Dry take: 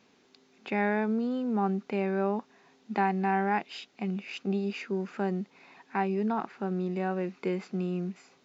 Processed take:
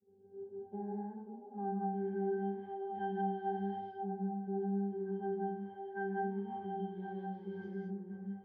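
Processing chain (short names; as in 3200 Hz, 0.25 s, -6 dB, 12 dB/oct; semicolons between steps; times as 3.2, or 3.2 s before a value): zero-crossing step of -31.5 dBFS; high shelf 4200 Hz -7 dB; octave resonator G, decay 0.5 s; dynamic EQ 220 Hz, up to -3 dB, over -51 dBFS, Q 2.2; expander -44 dBFS; LFO low-pass saw up 0.26 Hz 450–6000 Hz; on a send: delay with a stepping band-pass 0.533 s, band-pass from 610 Hz, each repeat 0.7 oct, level -7.5 dB; on the sum: non-linear reverb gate 0.23 s rising, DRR -3.5 dB; compressor 2:1, threshold -37 dBFS, peak gain reduction 8 dB; gain -1 dB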